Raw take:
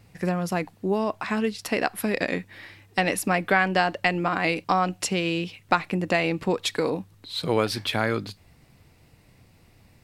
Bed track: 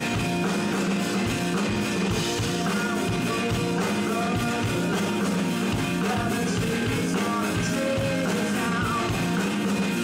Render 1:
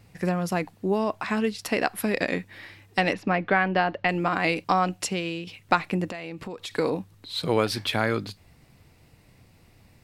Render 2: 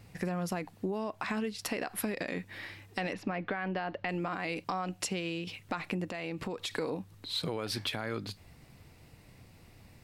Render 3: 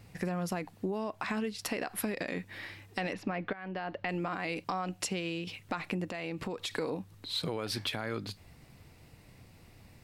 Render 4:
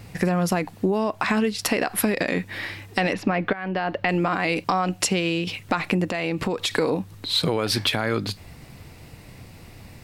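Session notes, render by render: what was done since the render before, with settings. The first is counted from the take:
3.13–4.09 s: distance through air 240 m; 4.87–5.47 s: fade out, to -8.5 dB; 6.09–6.71 s: compression 4:1, threshold -34 dBFS
peak limiter -16.5 dBFS, peak gain reduction 11 dB; compression, threshold -31 dBFS, peak gain reduction 9.5 dB
3.53–4.10 s: fade in equal-power, from -13.5 dB
trim +12 dB

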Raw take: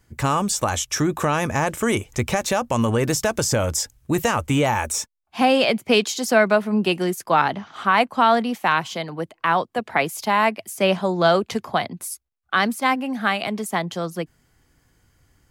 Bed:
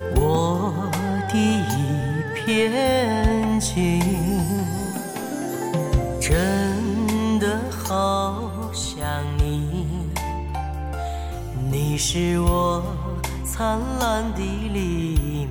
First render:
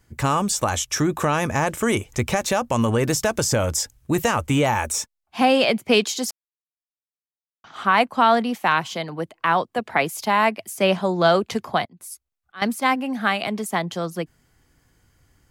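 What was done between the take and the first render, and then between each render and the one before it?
6.31–7.64 s: mute; 11.83–12.62 s: slow attack 469 ms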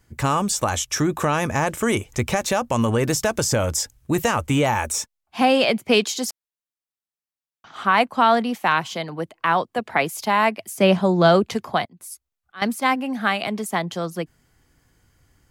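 10.77–11.49 s: bass shelf 320 Hz +8 dB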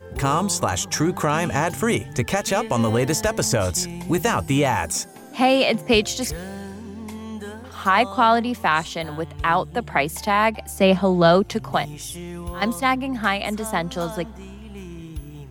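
add bed -13 dB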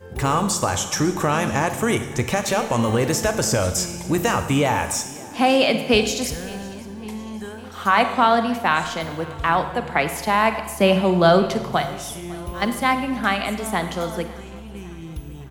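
feedback delay 552 ms, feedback 53%, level -21.5 dB; Schroeder reverb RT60 1.1 s, combs from 33 ms, DRR 8.5 dB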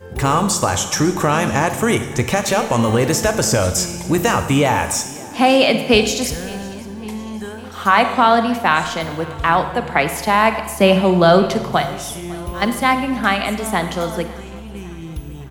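trim +4 dB; peak limiter -1 dBFS, peak gain reduction 2.5 dB

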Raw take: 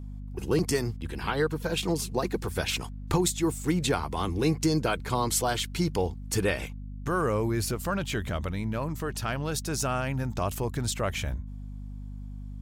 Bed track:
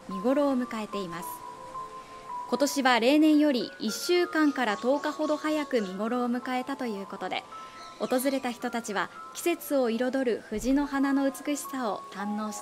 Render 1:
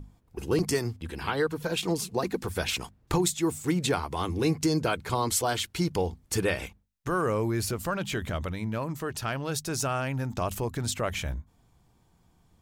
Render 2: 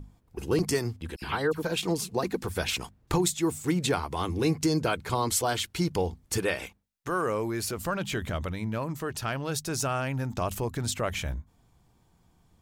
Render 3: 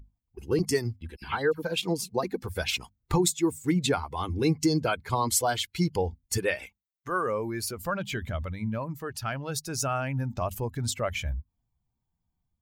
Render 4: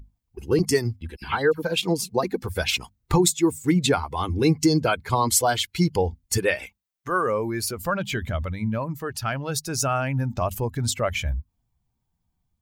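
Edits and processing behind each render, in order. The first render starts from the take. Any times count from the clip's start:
hum notches 50/100/150/200/250 Hz
1.16–1.63 s: phase dispersion lows, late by 58 ms, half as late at 2.2 kHz; 6.38–7.77 s: bass shelf 160 Hz -10.5 dB
expander on every frequency bin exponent 1.5; level rider gain up to 3.5 dB
trim +5 dB

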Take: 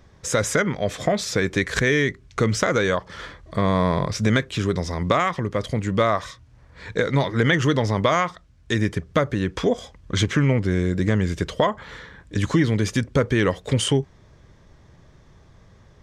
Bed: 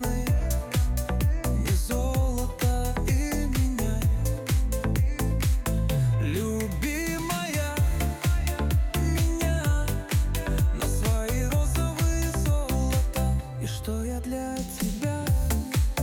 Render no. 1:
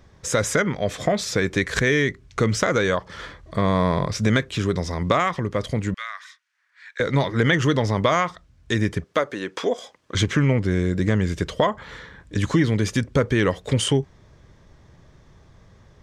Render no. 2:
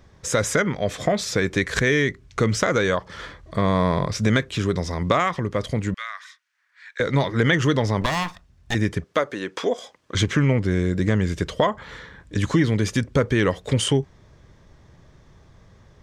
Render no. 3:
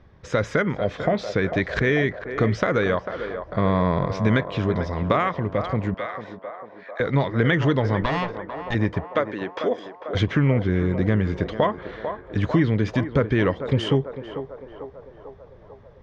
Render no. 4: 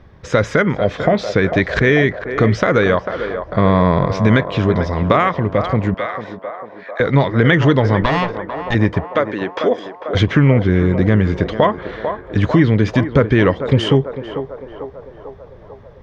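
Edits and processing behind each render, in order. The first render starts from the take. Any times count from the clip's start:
5.94–7.00 s: ladder high-pass 1.4 kHz, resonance 45%; 9.04–10.15 s: high-pass 360 Hz
8.01–8.75 s: comb filter that takes the minimum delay 1.1 ms
distance through air 250 m; band-passed feedback delay 446 ms, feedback 70%, band-pass 710 Hz, level -7.5 dB
trim +7.5 dB; peak limiter -2 dBFS, peak gain reduction 2.5 dB

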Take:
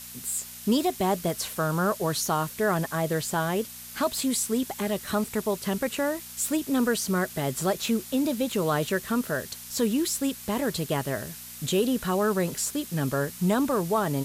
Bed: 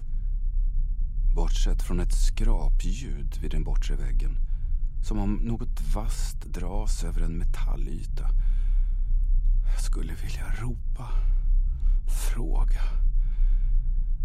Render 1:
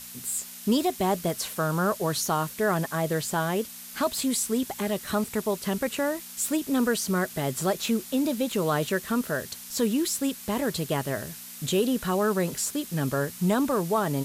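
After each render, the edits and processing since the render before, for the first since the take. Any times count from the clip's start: de-hum 60 Hz, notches 2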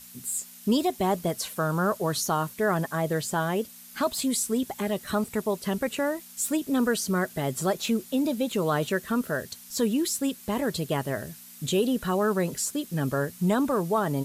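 noise reduction 7 dB, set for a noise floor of -42 dBFS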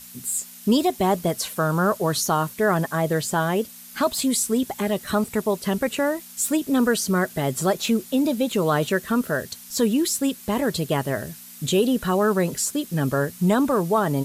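trim +4.5 dB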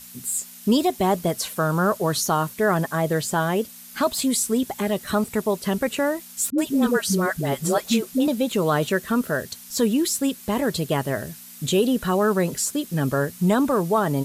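6.50–8.28 s: phase dispersion highs, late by 81 ms, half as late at 420 Hz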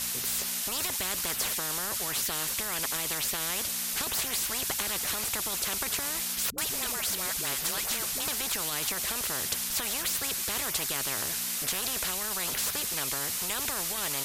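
peak limiter -14 dBFS, peak gain reduction 5 dB; spectrum-flattening compressor 10:1

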